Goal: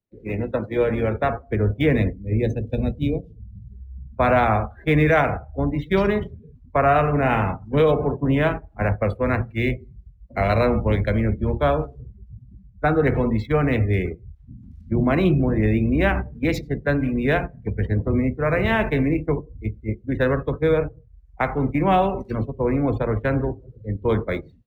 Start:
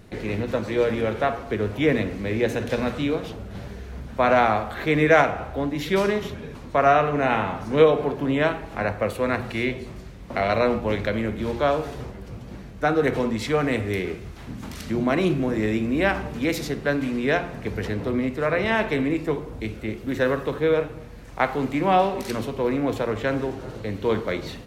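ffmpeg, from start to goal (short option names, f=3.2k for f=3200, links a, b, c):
-filter_complex "[0:a]asettb=1/sr,asplit=3[a][b][c];[a]atrim=end=2.134[d];[b]atrim=start=2.13:end=3.73,asetpts=PTS-STARTPTS,afade=t=in:d=0.004:c=qsin,afade=t=out:st=1.596:d=0.004:c=qsin,equalizer=f=1.2k:t=o:w=1.6:g=-12[e];[c]atrim=start=3.726[f];[d][e]acrossfade=d=0.004:c1=hsin:c2=qsin[g];[g][f]acrossfade=d=0.004:c1=qsin:c2=hsin,agate=range=-11dB:threshold=-27dB:ratio=16:detection=peak,afftdn=nr=31:nf=-36,acrossover=split=140|700|3100[h][i][j][k];[h]dynaudnorm=f=730:g=3:m=11dB[l];[k]acrusher=bits=3:mode=log:mix=0:aa=0.000001[m];[l][i][j][m]amix=inputs=4:normalize=0,alimiter=level_in=8dB:limit=-1dB:release=50:level=0:latency=1,volume=-7dB"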